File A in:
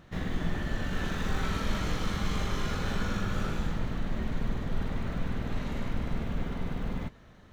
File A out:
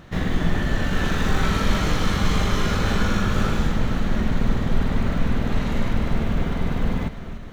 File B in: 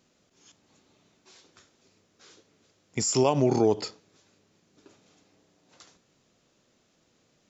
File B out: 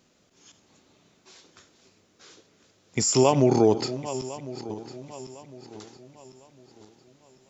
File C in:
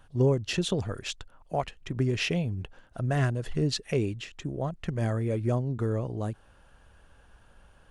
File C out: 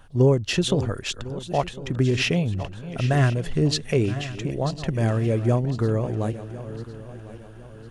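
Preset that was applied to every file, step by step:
regenerating reverse delay 0.527 s, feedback 60%, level -13 dB; match loudness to -24 LUFS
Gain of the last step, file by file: +9.5, +3.5, +5.5 dB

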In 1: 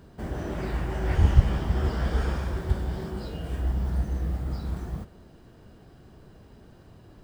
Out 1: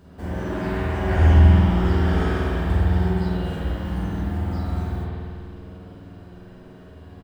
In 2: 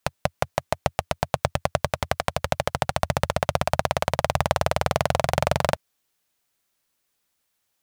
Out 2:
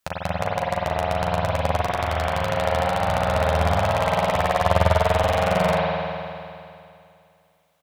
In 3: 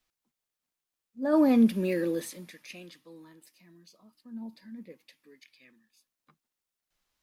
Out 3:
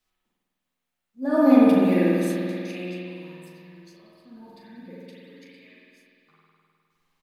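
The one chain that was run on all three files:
limiter -7.5 dBFS; early reflections 11 ms -7 dB, 39 ms -7 dB; spring tank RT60 2.5 s, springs 50 ms, chirp 45 ms, DRR -6.5 dB; gain -1 dB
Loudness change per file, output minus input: +7.0, +3.5, +5.0 LU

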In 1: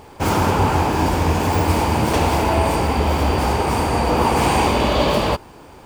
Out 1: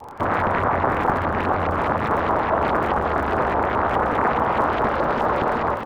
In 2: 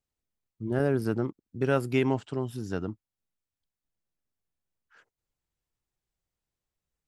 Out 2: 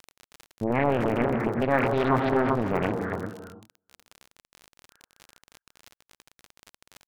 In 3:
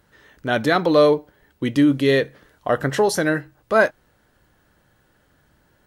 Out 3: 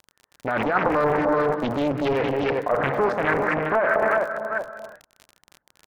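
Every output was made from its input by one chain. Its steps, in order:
on a send: feedback echo 0.386 s, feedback 22%, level -11.5 dB; on the sum: gate -46 dBFS, range -30 dB; AGC gain up to 9.5 dB; non-linear reverb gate 0.37 s flat, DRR 7.5 dB; reverse; compressor 6:1, threshold -14 dBFS; reverse; bell 350 Hz -4 dB 0.48 oct; limiter -16.5 dBFS; LFO low-pass saw up 4.8 Hz 850–1700 Hz; low shelf 120 Hz -6.5 dB; crackle 41/s -32 dBFS; Doppler distortion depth 0.99 ms; normalise peaks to -9 dBFS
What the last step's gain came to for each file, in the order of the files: +2.0, +2.5, +2.0 dB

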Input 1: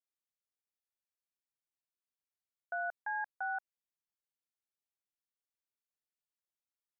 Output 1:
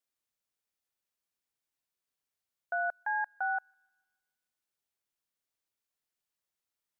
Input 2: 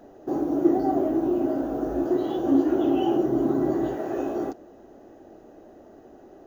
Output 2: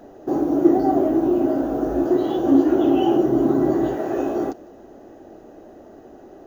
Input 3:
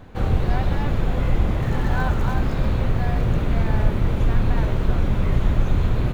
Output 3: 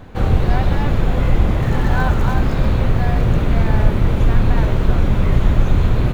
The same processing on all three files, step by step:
thin delay 0.152 s, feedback 49%, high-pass 2800 Hz, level -21 dB; gain +5 dB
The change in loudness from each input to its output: +5.0, +5.0, +5.0 LU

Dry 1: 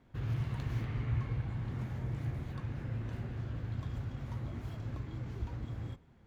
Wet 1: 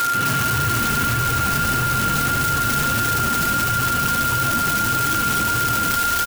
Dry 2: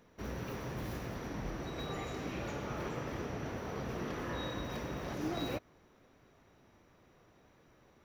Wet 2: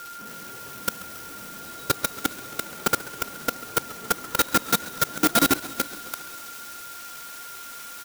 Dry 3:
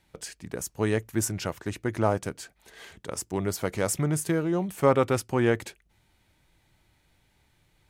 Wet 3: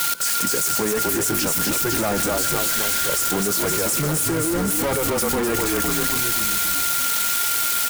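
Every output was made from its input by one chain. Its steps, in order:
switching spikes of -19 dBFS; HPF 140 Hz 24 dB/oct; on a send: frequency-shifting echo 0.255 s, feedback 54%, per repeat -36 Hz, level -7.5 dB; on the sum: whine 1400 Hz -37 dBFS; sample leveller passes 5; flange 1.6 Hz, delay 1.9 ms, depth 2.9 ms, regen -42%; level quantiser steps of 23 dB; warbling echo 0.137 s, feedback 70%, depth 121 cents, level -18 dB; normalise peaks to -9 dBFS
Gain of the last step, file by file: +26.5, +6.5, +1.5 dB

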